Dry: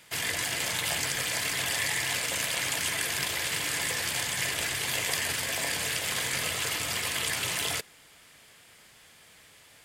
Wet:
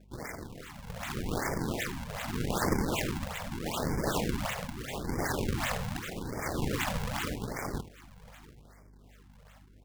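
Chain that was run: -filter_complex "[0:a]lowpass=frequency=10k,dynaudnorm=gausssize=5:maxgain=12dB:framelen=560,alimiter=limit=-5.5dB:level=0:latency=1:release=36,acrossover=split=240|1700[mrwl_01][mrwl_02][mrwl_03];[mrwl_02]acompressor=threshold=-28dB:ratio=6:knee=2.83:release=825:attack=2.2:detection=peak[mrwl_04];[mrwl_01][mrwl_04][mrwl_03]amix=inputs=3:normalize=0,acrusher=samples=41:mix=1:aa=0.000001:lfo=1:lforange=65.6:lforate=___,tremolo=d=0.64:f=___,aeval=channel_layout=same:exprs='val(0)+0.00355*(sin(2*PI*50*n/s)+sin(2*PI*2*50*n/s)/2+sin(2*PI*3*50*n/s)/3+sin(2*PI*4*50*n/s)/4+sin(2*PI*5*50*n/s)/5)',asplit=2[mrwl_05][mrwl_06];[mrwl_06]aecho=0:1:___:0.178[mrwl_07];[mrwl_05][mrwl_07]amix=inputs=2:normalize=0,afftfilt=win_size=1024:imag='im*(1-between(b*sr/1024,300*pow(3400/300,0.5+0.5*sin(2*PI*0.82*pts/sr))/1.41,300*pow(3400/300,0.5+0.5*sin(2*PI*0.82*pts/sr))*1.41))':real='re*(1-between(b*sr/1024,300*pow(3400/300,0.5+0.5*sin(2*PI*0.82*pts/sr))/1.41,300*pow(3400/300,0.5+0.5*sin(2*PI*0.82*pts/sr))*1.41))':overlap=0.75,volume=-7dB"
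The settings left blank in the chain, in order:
2.6, 0.73, 77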